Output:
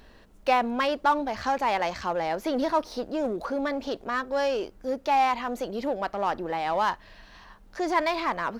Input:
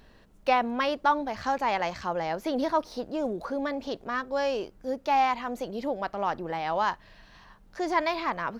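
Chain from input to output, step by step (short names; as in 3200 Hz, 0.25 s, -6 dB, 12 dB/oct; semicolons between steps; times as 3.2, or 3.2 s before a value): bell 140 Hz -7.5 dB 0.64 oct; in parallel at -6 dB: overloaded stage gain 31.5 dB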